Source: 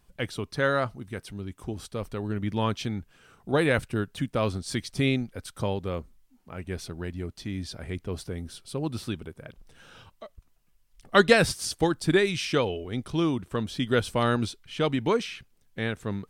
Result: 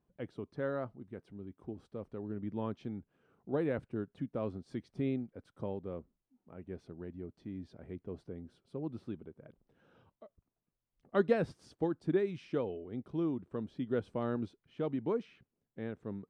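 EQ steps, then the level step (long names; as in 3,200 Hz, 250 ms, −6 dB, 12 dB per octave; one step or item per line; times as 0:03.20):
resonant band-pass 310 Hz, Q 0.7
−7.5 dB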